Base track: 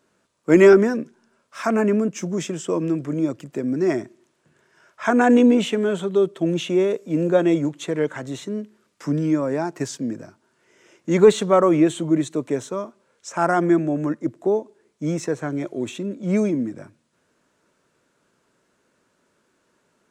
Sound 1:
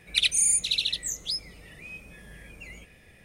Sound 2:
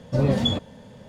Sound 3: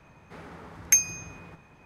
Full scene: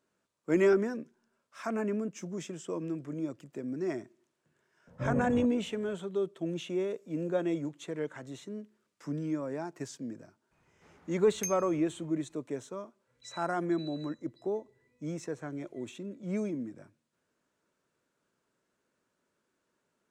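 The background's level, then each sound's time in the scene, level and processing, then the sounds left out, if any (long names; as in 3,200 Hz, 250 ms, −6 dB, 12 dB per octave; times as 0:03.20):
base track −13 dB
0:04.87: mix in 2 −12 dB + low-pass filter 1,600 Hz 24 dB per octave
0:10.51: mix in 3 −16.5 dB
0:13.07: mix in 1 −6 dB + resonances in every octave B, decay 0.41 s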